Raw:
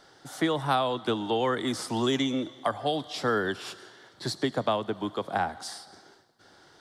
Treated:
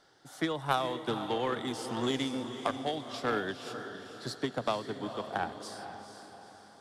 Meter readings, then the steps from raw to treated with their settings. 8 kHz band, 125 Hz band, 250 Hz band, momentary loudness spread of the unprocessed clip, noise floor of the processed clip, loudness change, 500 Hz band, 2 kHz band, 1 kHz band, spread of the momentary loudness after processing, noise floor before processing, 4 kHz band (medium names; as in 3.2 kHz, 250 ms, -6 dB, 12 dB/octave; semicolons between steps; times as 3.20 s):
-6.0 dB, -5.5 dB, -5.5 dB, 12 LU, -55 dBFS, -5.5 dB, -5.0 dB, -4.5 dB, -4.5 dB, 15 LU, -58 dBFS, -5.0 dB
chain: echo that smears into a reverb 467 ms, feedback 49%, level -7.5 dB; Chebyshev shaper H 3 -14 dB, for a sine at -11.5 dBFS